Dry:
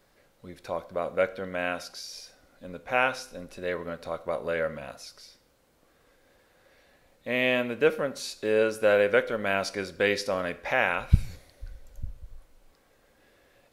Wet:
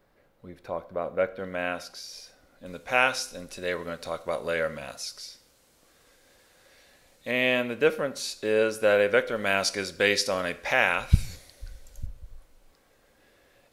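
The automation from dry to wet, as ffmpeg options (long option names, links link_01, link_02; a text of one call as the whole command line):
ffmpeg -i in.wav -af "asetnsamples=nb_out_samples=441:pad=0,asendcmd='1.39 equalizer g -1;2.66 equalizer g 10;7.31 equalizer g 3.5;9.36 equalizer g 9.5;12.06 equalizer g 2',equalizer=frequency=7500:width_type=o:width=2.6:gain=-10" out.wav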